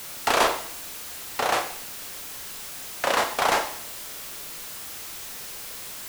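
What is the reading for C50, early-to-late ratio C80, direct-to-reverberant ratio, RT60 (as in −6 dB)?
8.5 dB, 12.5 dB, 4.5 dB, 0.60 s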